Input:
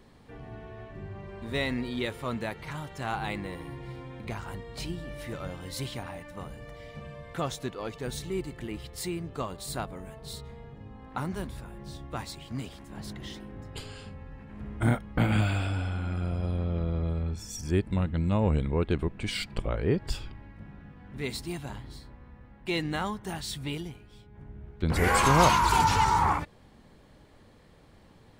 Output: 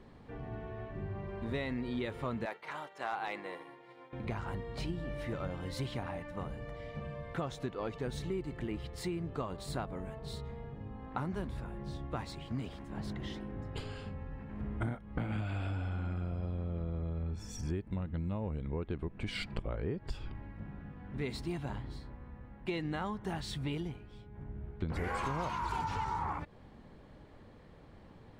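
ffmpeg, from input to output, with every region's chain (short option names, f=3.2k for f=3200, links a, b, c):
-filter_complex "[0:a]asettb=1/sr,asplit=3[a][b][c];[a]atrim=end=2.454[d];[b]atrim=start=2.45:end=4.13,asetpts=PTS-STARTPTS,afade=t=in:d=0.004:c=qsin,afade=t=out:st=1.676:d=0.004:c=qsin,highpass=490,agate=range=-33dB:threshold=-44dB:ratio=3:release=100:detection=peak,asoftclip=type=hard:threshold=-24.5dB[e];[c]atrim=start=4.126[f];[d][e]acrossfade=d=0.004:c1=hsin:c2=qsin[g];[g][f]acrossfade=d=0.004:c1=qsin:c2=hsin,lowpass=f=2k:p=1,acompressor=threshold=-33dB:ratio=12,volume=1dB"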